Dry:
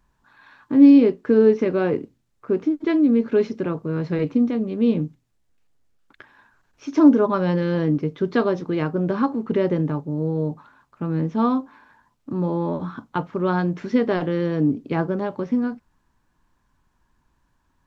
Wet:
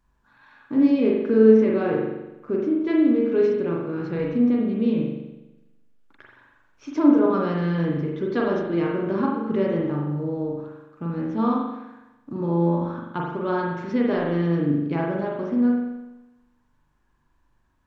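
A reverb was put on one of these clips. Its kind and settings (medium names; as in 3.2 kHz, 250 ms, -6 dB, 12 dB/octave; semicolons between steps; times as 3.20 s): spring tank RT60 1 s, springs 41 ms, chirp 60 ms, DRR -2 dB; trim -5.5 dB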